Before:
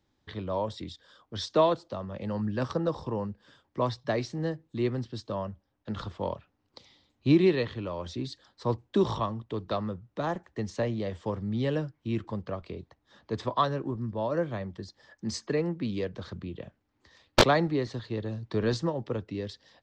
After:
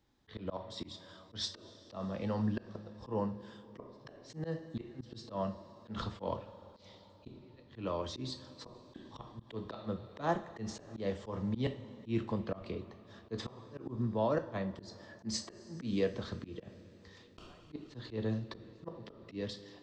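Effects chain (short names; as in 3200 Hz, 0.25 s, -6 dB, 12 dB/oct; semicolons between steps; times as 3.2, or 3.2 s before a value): flipped gate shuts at -19 dBFS, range -39 dB; two-slope reverb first 0.33 s, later 4.3 s, from -20 dB, DRR 7 dB; auto swell 0.125 s; gain -1 dB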